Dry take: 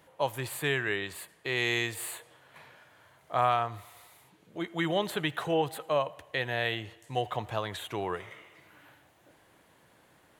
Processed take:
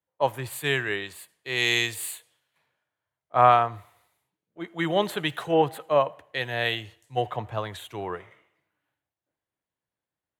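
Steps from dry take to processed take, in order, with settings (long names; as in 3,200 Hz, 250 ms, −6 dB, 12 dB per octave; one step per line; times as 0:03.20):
multiband upward and downward expander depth 100%
level +2 dB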